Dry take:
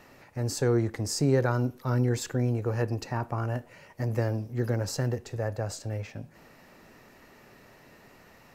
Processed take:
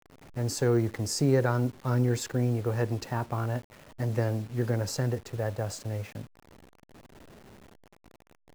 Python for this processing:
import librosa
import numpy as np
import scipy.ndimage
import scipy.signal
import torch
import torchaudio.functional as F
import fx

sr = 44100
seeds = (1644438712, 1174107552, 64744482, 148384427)

y = fx.delta_hold(x, sr, step_db=-45.0)